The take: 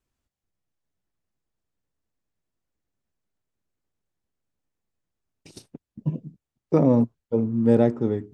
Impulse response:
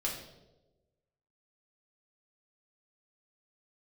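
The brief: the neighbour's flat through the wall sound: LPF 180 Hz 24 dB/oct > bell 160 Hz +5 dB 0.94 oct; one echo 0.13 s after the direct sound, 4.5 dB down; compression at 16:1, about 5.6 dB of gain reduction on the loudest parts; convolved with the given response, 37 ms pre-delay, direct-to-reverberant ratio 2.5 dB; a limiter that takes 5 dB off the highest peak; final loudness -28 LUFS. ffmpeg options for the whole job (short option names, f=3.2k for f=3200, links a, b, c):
-filter_complex "[0:a]acompressor=threshold=-18dB:ratio=16,alimiter=limit=-16.5dB:level=0:latency=1,aecho=1:1:130:0.596,asplit=2[a][b];[1:a]atrim=start_sample=2205,adelay=37[c];[b][c]afir=irnorm=-1:irlink=0,volume=-6dB[d];[a][d]amix=inputs=2:normalize=0,lowpass=f=180:w=0.5412,lowpass=f=180:w=1.3066,equalizer=f=160:t=o:w=0.94:g=5"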